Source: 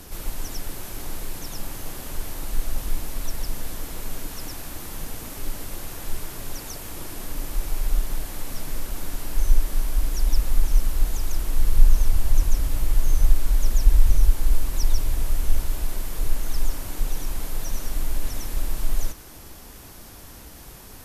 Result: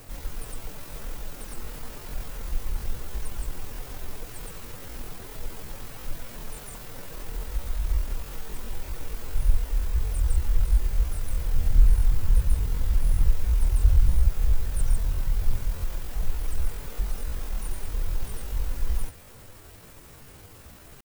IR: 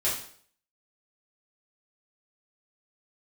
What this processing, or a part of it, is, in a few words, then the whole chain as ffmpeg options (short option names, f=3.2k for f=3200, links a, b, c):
chipmunk voice: -af "asetrate=70004,aresample=44100,atempo=0.629961,volume=-4dB"